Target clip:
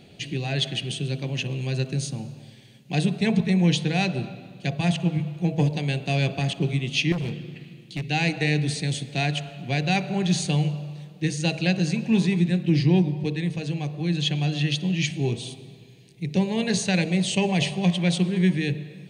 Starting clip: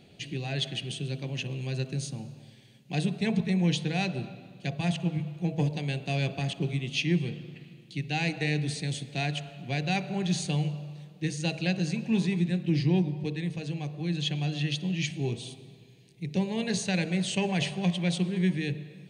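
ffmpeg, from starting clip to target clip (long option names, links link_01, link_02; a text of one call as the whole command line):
ffmpeg -i in.wav -filter_complex "[0:a]asettb=1/sr,asplit=3[link_01][link_02][link_03];[link_01]atrim=end=7.124[link_04];[link_02]atrim=start=7.12:end=8.1,asetpts=PTS-STARTPTS,afade=type=in:duration=0.004:curve=qsin,afade=type=out:start_time=0.976:duration=0.004:curve=qsin,asoftclip=type=hard:threshold=-30.5dB[link_05];[link_03]atrim=start=8.096[link_06];[link_04][link_05]acrossfade=duration=0.004:curve1=hsin:curve2=qsin[link_07];[link_07][link_06]acrossfade=duration=0.004:curve1=qsin:curve2=hsin,asettb=1/sr,asplit=3[link_08][link_09][link_10];[link_08]atrim=end=17.014[link_11];[link_09]atrim=start=17.01:end=17.86,asetpts=PTS-STARTPTS,afade=type=in:duration=0.004:curve=qsin,afade=type=out:start_time=0.846:duration=0.004:curve=qsin,equalizer=frequency=1500:width_type=o:width=0.43:gain=-8.5[link_12];[link_10]atrim=start=17.856[link_13];[link_11][link_12]acrossfade=duration=0.004:curve1=hsin:curve2=qsin[link_14];[link_14][link_13]acrossfade=duration=0.004:curve1=qsin:curve2=hsin,volume=5.5dB" out.wav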